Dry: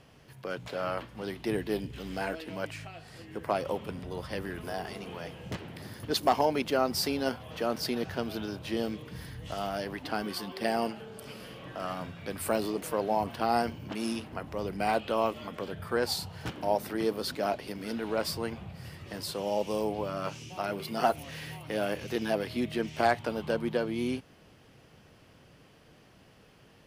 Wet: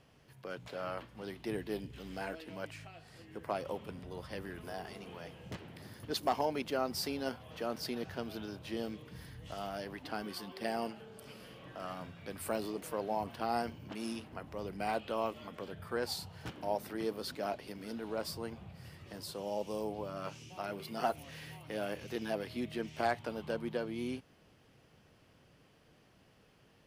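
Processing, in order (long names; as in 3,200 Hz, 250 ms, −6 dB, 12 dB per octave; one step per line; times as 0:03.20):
0:17.83–0:20.16: dynamic equaliser 2,200 Hz, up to −4 dB, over −50 dBFS, Q 1.1
level −7 dB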